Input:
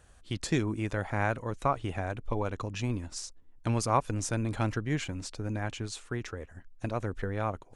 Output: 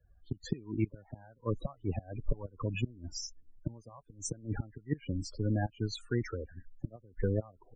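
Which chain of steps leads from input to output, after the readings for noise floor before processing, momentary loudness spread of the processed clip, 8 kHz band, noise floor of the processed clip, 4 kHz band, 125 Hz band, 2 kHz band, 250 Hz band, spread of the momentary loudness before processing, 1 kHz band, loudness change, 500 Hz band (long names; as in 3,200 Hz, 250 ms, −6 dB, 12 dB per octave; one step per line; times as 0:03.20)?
−56 dBFS, 12 LU, −5.5 dB, −65 dBFS, −5.0 dB, −3.0 dB, −10.5 dB, −3.5 dB, 10 LU, −15.5 dB, −4.5 dB, −5.0 dB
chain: gate with flip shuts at −20 dBFS, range −24 dB
spectral peaks only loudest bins 16
multiband upward and downward expander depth 40%
level +3 dB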